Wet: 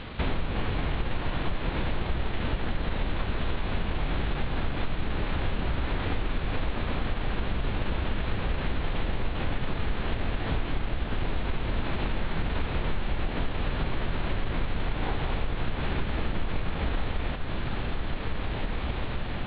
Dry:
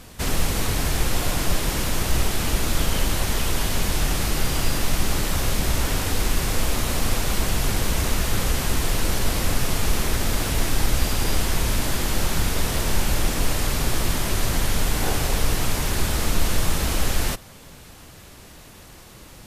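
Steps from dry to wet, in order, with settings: CVSD 16 kbps; on a send: diffused feedback echo 1.796 s, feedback 59%, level -12 dB; on the sum: compressor 6:1, threshold -30 dBFS, peak gain reduction 15.5 dB; formant shift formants +4 st; gain +5.5 dB

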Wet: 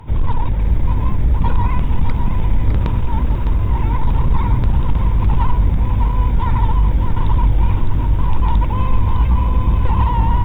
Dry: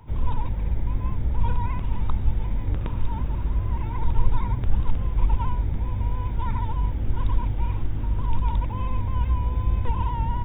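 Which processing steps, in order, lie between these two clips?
sine folder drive 10 dB, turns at -6.5 dBFS; lo-fi delay 0.607 s, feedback 35%, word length 8-bit, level -7 dB; gain -3 dB

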